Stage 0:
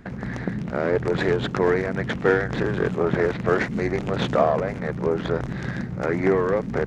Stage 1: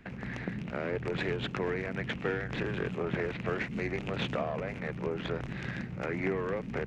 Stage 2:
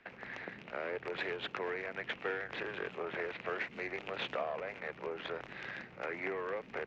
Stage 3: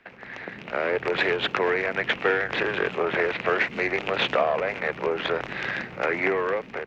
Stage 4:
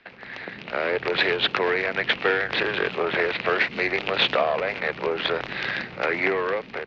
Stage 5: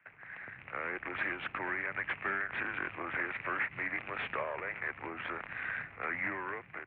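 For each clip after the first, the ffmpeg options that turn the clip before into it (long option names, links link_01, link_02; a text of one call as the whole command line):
ffmpeg -i in.wav -filter_complex "[0:a]equalizer=frequency=2600:width_type=o:width=0.74:gain=11.5,acrossover=split=260[link_01][link_02];[link_02]acompressor=threshold=-23dB:ratio=3[link_03];[link_01][link_03]amix=inputs=2:normalize=0,volume=-9dB" out.wav
ffmpeg -i in.wav -filter_complex "[0:a]acrossover=split=390 5800:gain=0.112 1 0.112[link_01][link_02][link_03];[link_01][link_02][link_03]amix=inputs=3:normalize=0,volume=-2dB" out.wav
ffmpeg -i in.wav -af "dynaudnorm=framelen=250:gausssize=5:maxgain=10dB,volume=4.5dB" out.wav
ffmpeg -i in.wav -af "lowpass=frequency=4400:width_type=q:width=2.6" out.wav
ffmpeg -i in.wav -af "equalizer=frequency=440:width_type=o:width=1.9:gain=-14,aeval=exprs='0.126*(abs(mod(val(0)/0.126+3,4)-2)-1)':channel_layout=same,highpass=frequency=180:width_type=q:width=0.5412,highpass=frequency=180:width_type=q:width=1.307,lowpass=frequency=2400:width_type=q:width=0.5176,lowpass=frequency=2400:width_type=q:width=0.7071,lowpass=frequency=2400:width_type=q:width=1.932,afreqshift=-80,volume=-6dB" out.wav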